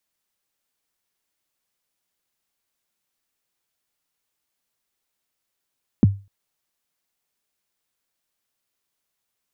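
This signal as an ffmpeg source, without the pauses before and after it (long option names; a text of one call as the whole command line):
ffmpeg -f lavfi -i "aevalsrc='0.473*pow(10,-3*t/0.3)*sin(2*PI*(300*0.022/log(99/300)*(exp(log(99/300)*min(t,0.022)/0.022)-1)+99*max(t-0.022,0)))':duration=0.25:sample_rate=44100" out.wav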